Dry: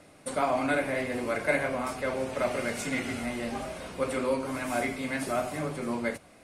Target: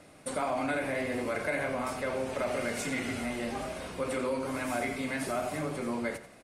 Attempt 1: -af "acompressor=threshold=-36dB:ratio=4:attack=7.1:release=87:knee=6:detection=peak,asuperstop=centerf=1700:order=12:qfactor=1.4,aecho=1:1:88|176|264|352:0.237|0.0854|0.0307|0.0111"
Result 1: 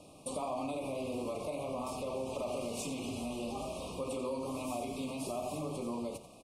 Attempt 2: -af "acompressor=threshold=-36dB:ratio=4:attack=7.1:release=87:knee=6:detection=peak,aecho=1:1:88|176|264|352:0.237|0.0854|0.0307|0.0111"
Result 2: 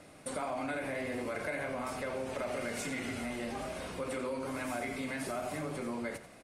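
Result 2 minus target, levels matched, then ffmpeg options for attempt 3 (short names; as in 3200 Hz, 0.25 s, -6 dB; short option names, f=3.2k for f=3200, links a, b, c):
compressor: peak gain reduction +5.5 dB
-af "acompressor=threshold=-28.5dB:ratio=4:attack=7.1:release=87:knee=6:detection=peak,aecho=1:1:88|176|264|352:0.237|0.0854|0.0307|0.0111"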